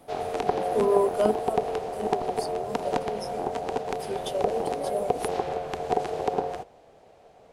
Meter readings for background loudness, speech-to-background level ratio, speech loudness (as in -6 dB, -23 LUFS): -30.0 LUFS, -0.5 dB, -30.5 LUFS